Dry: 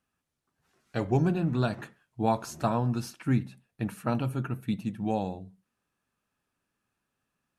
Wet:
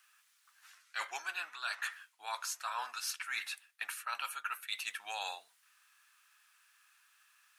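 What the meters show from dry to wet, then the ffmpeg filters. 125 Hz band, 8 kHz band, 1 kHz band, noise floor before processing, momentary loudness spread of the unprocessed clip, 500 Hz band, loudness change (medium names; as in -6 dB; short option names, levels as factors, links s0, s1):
under -40 dB, +5.5 dB, -7.0 dB, -83 dBFS, 11 LU, -23.0 dB, -9.5 dB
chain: -af "highpass=f=1300:w=0.5412,highpass=f=1300:w=1.3066,areverse,acompressor=threshold=0.00224:ratio=12,areverse,volume=7.5"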